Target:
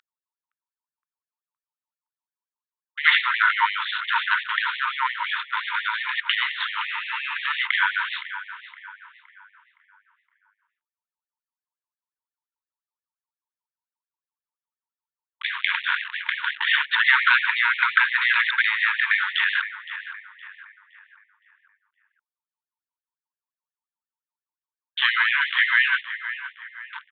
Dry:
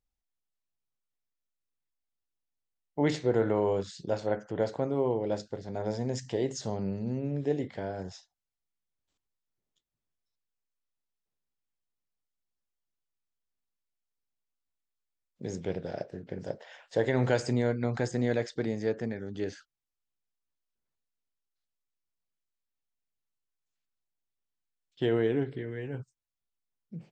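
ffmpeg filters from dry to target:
-filter_complex "[0:a]acrossover=split=2800[s0][s1];[s1]acompressor=threshold=0.002:ratio=4:attack=1:release=60[s2];[s0][s2]amix=inputs=2:normalize=0,highpass=570,asplit=2[s3][s4];[s4]acompressor=threshold=0.00562:ratio=6,volume=1.06[s5];[s3][s5]amix=inputs=2:normalize=0,aeval=exprs='val(0)*gte(abs(val(0)),0.00355)':c=same,aeval=exprs='val(0)+0.00282*(sin(2*PI*50*n/s)+sin(2*PI*2*50*n/s)/2+sin(2*PI*3*50*n/s)/3+sin(2*PI*4*50*n/s)/4+sin(2*PI*5*50*n/s)/5)':c=same,aresample=8000,asoftclip=type=tanh:threshold=0.0447,aresample=44100,asplit=2[s6][s7];[s7]adelay=516,lowpass=f=2100:p=1,volume=0.282,asplit=2[s8][s9];[s9]adelay=516,lowpass=f=2100:p=1,volume=0.51,asplit=2[s10][s11];[s11]adelay=516,lowpass=f=2100:p=1,volume=0.51,asplit=2[s12][s13];[s13]adelay=516,lowpass=f=2100:p=1,volume=0.51,asplit=2[s14][s15];[s15]adelay=516,lowpass=f=2100:p=1,volume=0.51[s16];[s6][s8][s10][s12][s14][s16]amix=inputs=6:normalize=0,alimiter=level_in=29.9:limit=0.891:release=50:level=0:latency=1,afftfilt=real='re*gte(b*sr/1024,870*pow(1800/870,0.5+0.5*sin(2*PI*5.7*pts/sr)))':imag='im*gte(b*sr/1024,870*pow(1800/870,0.5+0.5*sin(2*PI*5.7*pts/sr)))':win_size=1024:overlap=0.75,volume=0.891"

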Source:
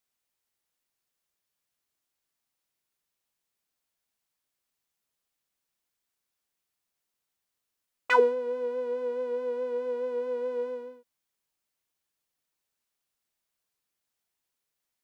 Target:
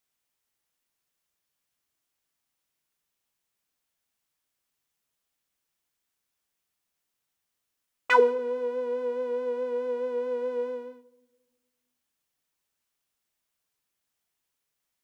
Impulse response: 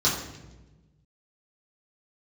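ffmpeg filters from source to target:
-filter_complex "[0:a]asplit=2[s0][s1];[1:a]atrim=start_sample=2205,asetrate=36603,aresample=44100[s2];[s1][s2]afir=irnorm=-1:irlink=0,volume=0.0316[s3];[s0][s3]amix=inputs=2:normalize=0,volume=1.26"

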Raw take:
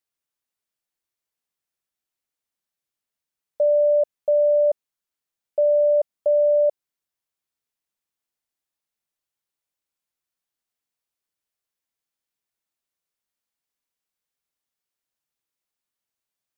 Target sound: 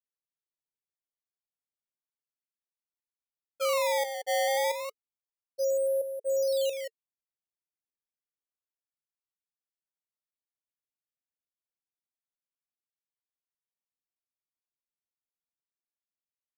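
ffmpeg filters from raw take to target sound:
-af "agate=range=0.0224:threshold=0.501:ratio=3:detection=peak,equalizer=f=490:w=0.91:g=3.5,bandreject=f=490:w=12,asetrate=40440,aresample=44100,atempo=1.09051,aecho=1:1:179:0.355,acrusher=samples=19:mix=1:aa=0.000001:lfo=1:lforange=30.4:lforate=0.29,volume=2"

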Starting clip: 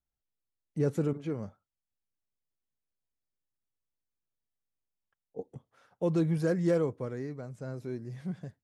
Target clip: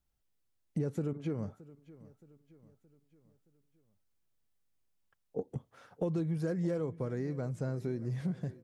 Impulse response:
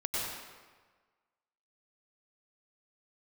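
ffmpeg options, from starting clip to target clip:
-filter_complex "[0:a]lowshelf=f=320:g=4.5,acompressor=threshold=0.0141:ratio=6,asplit=2[s0][s1];[s1]aecho=0:1:621|1242|1863|2484:0.106|0.0519|0.0254|0.0125[s2];[s0][s2]amix=inputs=2:normalize=0,volume=1.88"

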